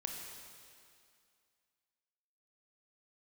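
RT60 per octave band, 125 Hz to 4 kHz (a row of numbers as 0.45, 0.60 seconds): 2.0, 2.3, 2.3, 2.3, 2.2, 2.2 seconds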